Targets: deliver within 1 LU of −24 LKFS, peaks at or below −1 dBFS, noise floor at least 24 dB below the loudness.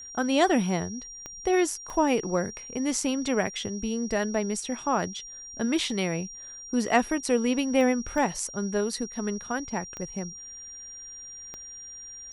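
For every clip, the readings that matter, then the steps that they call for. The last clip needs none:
number of clicks 6; interfering tone 5,700 Hz; level of the tone −40 dBFS; integrated loudness −27.5 LKFS; sample peak −7.5 dBFS; target loudness −24.0 LKFS
→ click removal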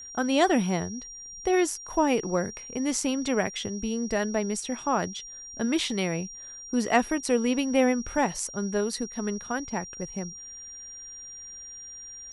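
number of clicks 0; interfering tone 5,700 Hz; level of the tone −40 dBFS
→ notch filter 5,700 Hz, Q 30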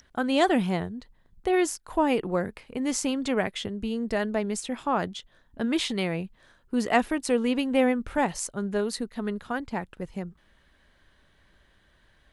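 interfering tone none found; integrated loudness −27.5 LKFS; sample peak −7.5 dBFS; target loudness −24.0 LKFS
→ level +3.5 dB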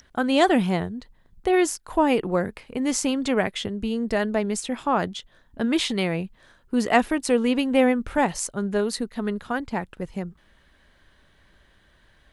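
integrated loudness −24.0 LKFS; sample peak −4.0 dBFS; background noise floor −60 dBFS

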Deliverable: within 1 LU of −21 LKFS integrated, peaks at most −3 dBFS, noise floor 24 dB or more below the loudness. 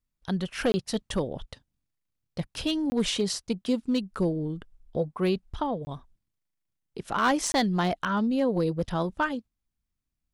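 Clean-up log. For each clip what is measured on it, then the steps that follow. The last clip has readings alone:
share of clipped samples 0.3%; peaks flattened at −17.5 dBFS; number of dropouts 4; longest dropout 20 ms; integrated loudness −28.5 LKFS; sample peak −17.5 dBFS; target loudness −21.0 LKFS
→ clipped peaks rebuilt −17.5 dBFS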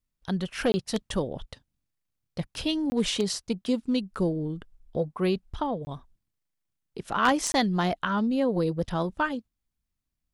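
share of clipped samples 0.0%; number of dropouts 4; longest dropout 20 ms
→ repair the gap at 0:00.72/0:02.90/0:05.85/0:07.52, 20 ms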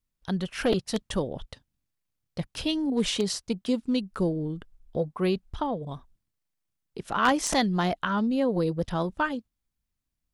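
number of dropouts 0; integrated loudness −28.0 LKFS; sample peak −8.5 dBFS; target loudness −21.0 LKFS
→ level +7 dB
brickwall limiter −3 dBFS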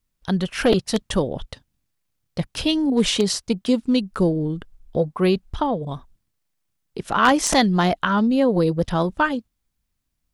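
integrated loudness −21.0 LKFS; sample peak −3.0 dBFS; background noise floor −76 dBFS

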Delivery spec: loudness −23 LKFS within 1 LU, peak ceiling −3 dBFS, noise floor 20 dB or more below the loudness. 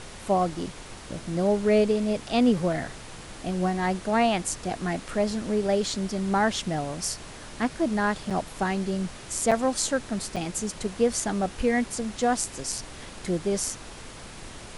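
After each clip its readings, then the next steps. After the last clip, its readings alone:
number of dropouts 3; longest dropout 6.3 ms; background noise floor −43 dBFS; target noise floor −47 dBFS; integrated loudness −27.0 LKFS; sample peak −7.5 dBFS; target loudness −23.0 LKFS
→ repair the gap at 0:08.30/0:09.51/0:10.36, 6.3 ms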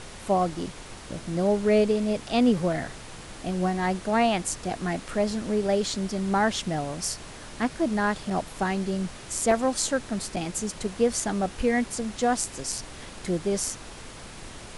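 number of dropouts 0; background noise floor −43 dBFS; target noise floor −47 dBFS
→ noise reduction from a noise print 6 dB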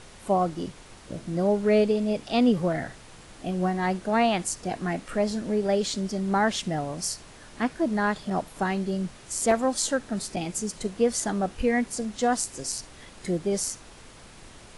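background noise floor −48 dBFS; integrated loudness −26.5 LKFS; sample peak −7.5 dBFS; target loudness −23.0 LKFS
→ level +3.5 dB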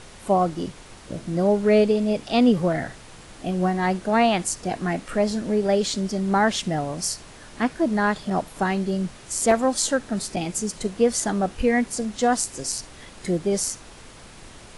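integrated loudness −23.0 LKFS; sample peak −4.0 dBFS; background noise floor −45 dBFS

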